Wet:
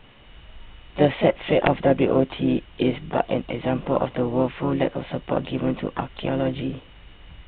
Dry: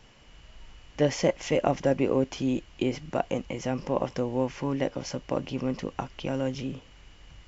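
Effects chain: wrapped overs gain 9 dB; harmoniser -7 st -15 dB, +4 st -8 dB; gain +5 dB; A-law 64 kbps 8000 Hz

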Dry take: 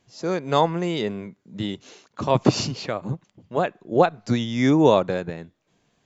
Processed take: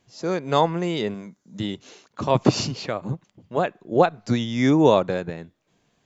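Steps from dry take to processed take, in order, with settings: 1.14–1.6 fifteen-band EQ 100 Hz -10 dB, 400 Hz -7 dB, 2500 Hz -6 dB, 6300 Hz +11 dB

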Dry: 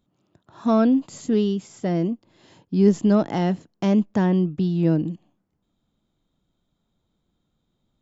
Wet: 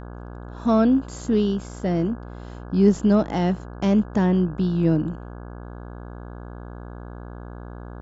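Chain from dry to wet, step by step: buzz 60 Hz, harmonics 28, -37 dBFS -5 dB/oct

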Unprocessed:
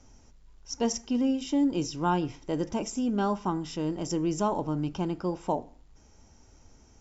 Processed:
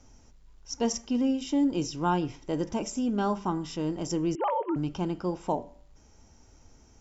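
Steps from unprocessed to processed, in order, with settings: 4.35–4.76 sine-wave speech; de-hum 193.6 Hz, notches 18

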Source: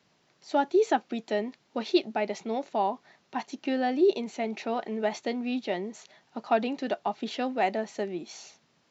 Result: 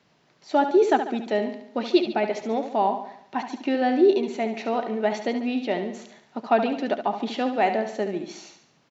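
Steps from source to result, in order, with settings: high shelf 5600 Hz -8.5 dB; feedback echo 71 ms, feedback 50%, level -9 dB; gain +4.5 dB

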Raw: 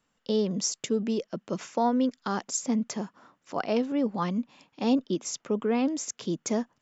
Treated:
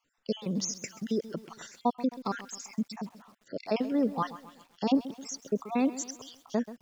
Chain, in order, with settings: random spectral dropouts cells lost 54%; lo-fi delay 0.132 s, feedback 55%, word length 8-bit, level -15 dB

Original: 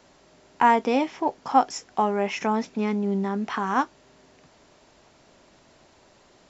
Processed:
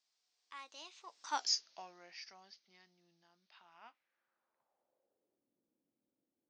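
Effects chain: Doppler pass-by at 1.44, 52 m/s, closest 6.2 m; band-pass sweep 4800 Hz -> 280 Hz, 3.39–5.51; gain +5.5 dB

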